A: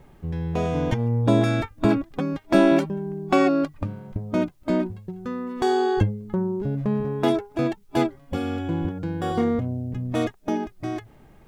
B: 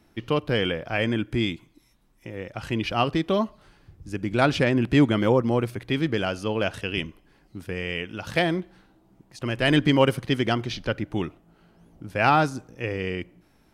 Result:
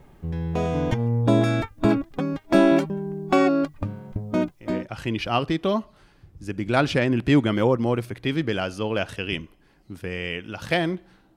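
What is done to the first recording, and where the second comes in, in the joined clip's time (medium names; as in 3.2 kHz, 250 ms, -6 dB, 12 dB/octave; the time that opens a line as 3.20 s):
A
4.71 s: go over to B from 2.36 s, crossfade 0.36 s equal-power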